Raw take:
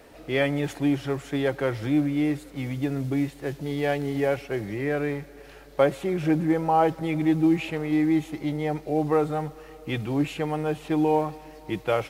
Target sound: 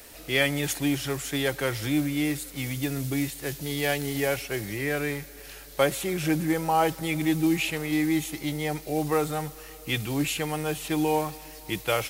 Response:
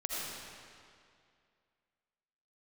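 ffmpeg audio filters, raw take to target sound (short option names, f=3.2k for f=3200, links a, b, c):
-filter_complex "[0:a]lowshelf=f=69:g=9.5,acrossover=split=710[a][b];[b]crystalizer=i=7:c=0[c];[a][c]amix=inputs=2:normalize=0,volume=-3.5dB"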